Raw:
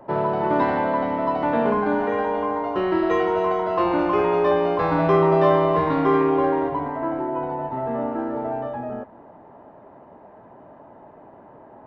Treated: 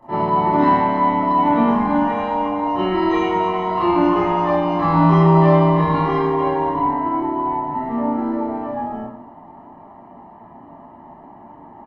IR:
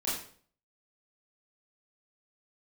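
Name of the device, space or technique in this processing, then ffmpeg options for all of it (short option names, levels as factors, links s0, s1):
microphone above a desk: -filter_complex "[0:a]aecho=1:1:1:0.64[s0];[1:a]atrim=start_sample=2205[s1];[s0][s1]afir=irnorm=-1:irlink=0,volume=0.708"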